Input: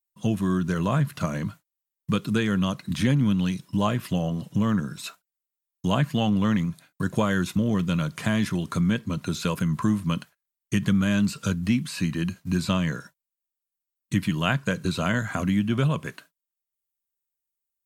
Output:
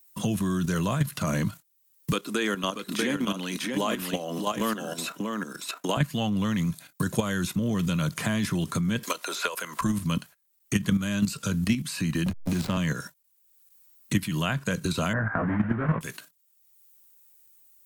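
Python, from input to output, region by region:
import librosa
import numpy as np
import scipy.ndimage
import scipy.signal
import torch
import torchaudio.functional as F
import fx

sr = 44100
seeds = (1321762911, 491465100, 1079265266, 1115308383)

y = fx.chain(x, sr, fx.highpass(hz=280.0, slope=24),
    fx.echo_single(ms=637, db=-5.5), at=(2.12, 5.97))
y = fx.chain(y, sr, fx.highpass(hz=480.0, slope=24),
    fx.band_squash(depth_pct=100), at=(9.03, 9.81))
y = fx.chain(y, sr, fx.high_shelf(hz=7700.0, db=-5.0),
    fx.backlash(play_db=-27.0),
    fx.band_squash(depth_pct=100), at=(12.26, 12.77))
y = fx.chain(y, sr, fx.block_float(bits=3),
    fx.ellip_lowpass(hz=1700.0, order=4, stop_db=70),
    fx.doubler(ms=18.0, db=-2), at=(15.13, 16.01))
y = fx.level_steps(y, sr, step_db=10)
y = fx.high_shelf(y, sr, hz=5900.0, db=8.5)
y = fx.band_squash(y, sr, depth_pct=70)
y = F.gain(torch.from_numpy(y), 3.5).numpy()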